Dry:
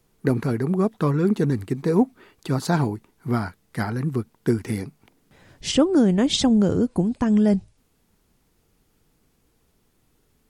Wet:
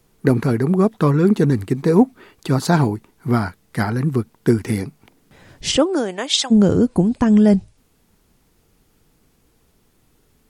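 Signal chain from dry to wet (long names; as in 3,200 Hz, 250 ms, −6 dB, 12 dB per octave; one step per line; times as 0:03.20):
0:05.76–0:06.50: high-pass filter 340 Hz → 1,200 Hz 12 dB per octave
level +5.5 dB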